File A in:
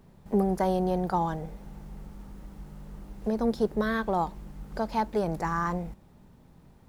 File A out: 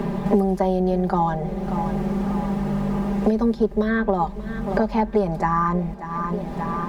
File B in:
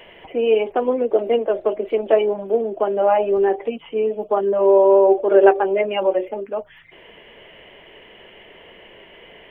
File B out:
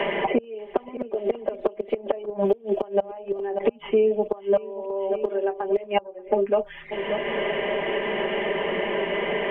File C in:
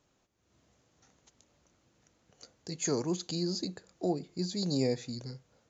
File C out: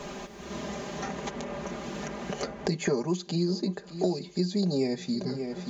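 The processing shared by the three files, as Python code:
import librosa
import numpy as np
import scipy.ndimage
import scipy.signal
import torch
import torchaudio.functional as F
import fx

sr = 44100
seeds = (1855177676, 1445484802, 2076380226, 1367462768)

p1 = fx.lowpass(x, sr, hz=2600.0, slope=6)
p2 = fx.gate_flip(p1, sr, shuts_db=-13.0, range_db=-30)
p3 = fx.peak_eq(p2, sr, hz=110.0, db=-10.5, octaves=0.54)
p4 = fx.notch(p3, sr, hz=1400.0, q=17.0)
p5 = p4 + 0.86 * np.pad(p4, (int(5.0 * sr / 1000.0), 0))[:len(p4)]
p6 = p5 + fx.echo_feedback(p5, sr, ms=585, feedback_pct=36, wet_db=-21.0, dry=0)
p7 = fx.band_squash(p6, sr, depth_pct=100)
y = F.gain(torch.from_numpy(p7), 4.0).numpy()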